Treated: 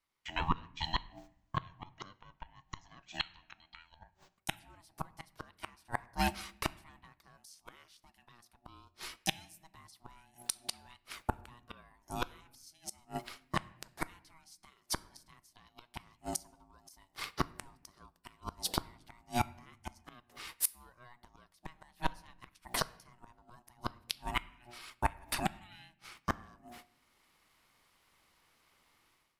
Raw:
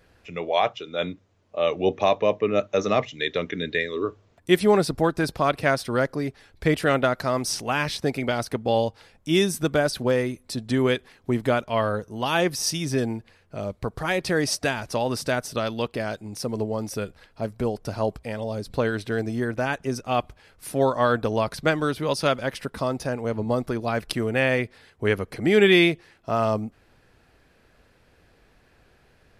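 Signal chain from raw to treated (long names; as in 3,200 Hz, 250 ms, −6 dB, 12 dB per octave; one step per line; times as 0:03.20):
RIAA equalisation recording
noise gate −51 dBFS, range −22 dB
high-shelf EQ 4,800 Hz −4.5 dB
mains-hum notches 60/120/180/240/300/360 Hz
automatic gain control gain up to 16.5 dB
gate with flip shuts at −12 dBFS, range −39 dB
ring modulation 480 Hz
on a send: convolution reverb RT60 0.80 s, pre-delay 3 ms, DRR 15.5 dB
on the sum: level −1 dB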